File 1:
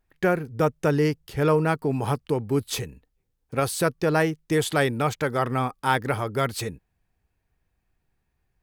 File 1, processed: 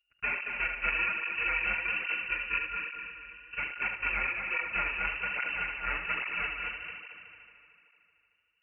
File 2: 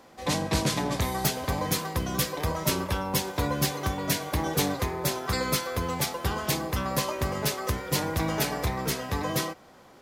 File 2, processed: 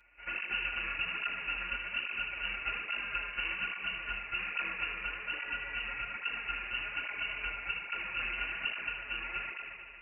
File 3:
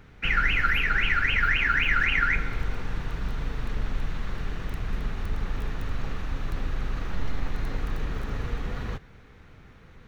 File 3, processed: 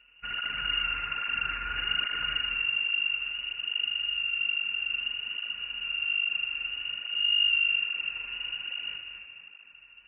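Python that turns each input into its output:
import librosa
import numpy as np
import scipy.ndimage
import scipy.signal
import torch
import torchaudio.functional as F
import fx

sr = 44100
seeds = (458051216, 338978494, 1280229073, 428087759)

p1 = np.r_[np.sort(x[:len(x) // 32 * 32].reshape(-1, 32), axis=1).ravel(), x[len(x) // 32 * 32:]]
p2 = p1 + fx.echo_heads(p1, sr, ms=75, heads='first and third', feedback_pct=67, wet_db=-6.5, dry=0)
p3 = fx.freq_invert(p2, sr, carrier_hz=2800)
p4 = fx.flanger_cancel(p3, sr, hz=1.2, depth_ms=7.6)
y = F.gain(torch.from_numpy(p4), -7.5).numpy()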